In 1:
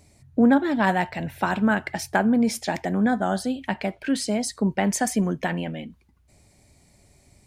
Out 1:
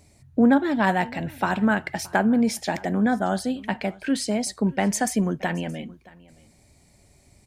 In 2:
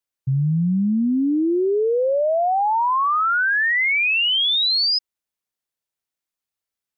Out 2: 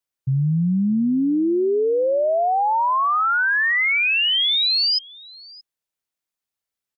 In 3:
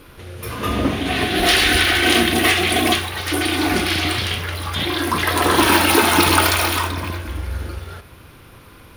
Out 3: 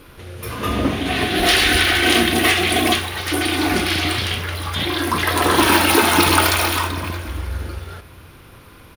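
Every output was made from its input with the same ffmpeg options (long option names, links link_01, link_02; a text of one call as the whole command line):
ffmpeg -i in.wav -af "aecho=1:1:623:0.0708" out.wav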